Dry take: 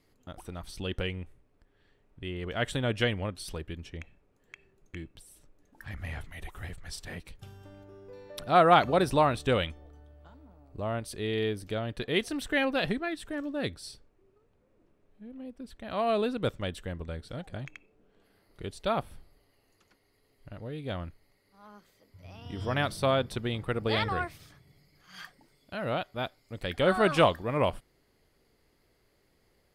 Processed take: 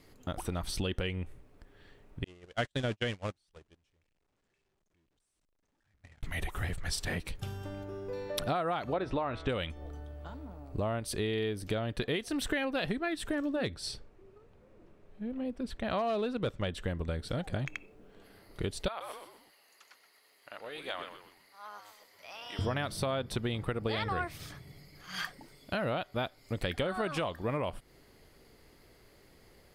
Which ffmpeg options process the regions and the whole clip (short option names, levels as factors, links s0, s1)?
-filter_complex "[0:a]asettb=1/sr,asplit=3[s0][s1][s2];[s0]atrim=end=2.244[s3];[s1]atrim=start=2.24:end=6.23,asetpts=PTS-STARTPTS,afade=t=in:d=0.004:c=qsin,afade=t=out:st=3.986:d=0.004:c=qsin,aeval=exprs='val(0)+0.5*0.0251*sgn(val(0))':c=same,lowpass=f=9000:w=0.5412,lowpass=f=9000:w=1.3066,agate=range=0.00316:threshold=0.0398:ratio=16:release=100:detection=peak[s4];[s2]atrim=start=6.226[s5];[s3][s4]acrossfade=d=0.004:c1=hsin:c2=qsin[s6];[s6][s5]acrossfade=d=0.004:c1=qsin:c2=hsin,asettb=1/sr,asplit=3[s7][s8][s9];[s7]atrim=end=8.934[s10];[s8]atrim=start=8.93:end=9.49,asetpts=PTS-STARTPTS,afade=t=in:d=0.004:c=qsin,afade=t=out:st=0.556:d=0.004:c=qsin,lowpass=2900,equalizer=f=160:w=2.9:g=-7.5,bandreject=f=162.8:t=h:w=4,bandreject=f=325.6:t=h:w=4,bandreject=f=488.4:t=h:w=4,bandreject=f=651.2:t=h:w=4,bandreject=f=814:t=h:w=4,bandreject=f=976.8:t=h:w=4,bandreject=f=1139.6:t=h:w=4,bandreject=f=1302.4:t=h:w=4,bandreject=f=1465.2:t=h:w=4,bandreject=f=1628:t=h:w=4,bandreject=f=1790.8:t=h:w=4,bandreject=f=1953.6:t=h:w=4,bandreject=f=2116.4:t=h:w=4,bandreject=f=2279.2:t=h:w=4,bandreject=f=2442:t=h:w=4,bandreject=f=2604.8:t=h:w=4,bandreject=f=2767.6:t=h:w=4,bandreject=f=2930.4:t=h:w=4,bandreject=f=3093.2:t=h:w=4,bandreject=f=3256:t=h:w=4,bandreject=f=3418.8:t=h:w=4,bandreject=f=3581.6:t=h:w=4[s11];[s9]atrim=start=9.486[s12];[s10][s11]acrossfade=d=0.004:c1=hsin:c2=qsin[s13];[s13][s12]acrossfade=d=0.004:c1=qsin:c2=hsin,asettb=1/sr,asplit=3[s14][s15][s16];[s14]atrim=end=13.564[s17];[s15]atrim=start=13.56:end=16.86,asetpts=PTS-STARTPTS,afade=t=in:d=0.004:c=qsin,afade=t=out:st=3.296:d=0.004:c=qsin,bandreject=f=280:w=8.7,asoftclip=type=hard:threshold=0.0794,highshelf=f=9100:g=-11[s18];[s16]atrim=start=16.856[s19];[s17][s18]acrossfade=d=0.004:c1=hsin:c2=qsin[s20];[s20][s19]acrossfade=d=0.004:c1=qsin:c2=hsin,asettb=1/sr,asplit=3[s21][s22][s23];[s21]atrim=end=18.884[s24];[s22]atrim=start=18.88:end=22.59,asetpts=PTS-STARTPTS,afade=t=in:d=0.004:c=qsin,afade=t=out:st=3.706:d=0.004:c=qsin,highpass=860,acompressor=threshold=0.00355:ratio=1.5:attack=3.2:release=140:knee=1:detection=peak,asplit=5[s25][s26][s27][s28][s29];[s26]adelay=125,afreqshift=-100,volume=0.355[s30];[s27]adelay=250,afreqshift=-200,volume=0.135[s31];[s28]adelay=375,afreqshift=-300,volume=0.0513[s32];[s29]adelay=500,afreqshift=-400,volume=0.0195[s33];[s25][s30][s31][s32][s33]amix=inputs=5:normalize=0,atrim=end_sample=163611[s34];[s23]atrim=start=22.586[s35];[s24][s34]acrossfade=d=0.004:c1=hsin:c2=qsin[s36];[s36][s35]acrossfade=d=0.004:c1=qsin:c2=hsin,alimiter=limit=0.119:level=0:latency=1:release=312,acompressor=threshold=0.0112:ratio=6,volume=2.82"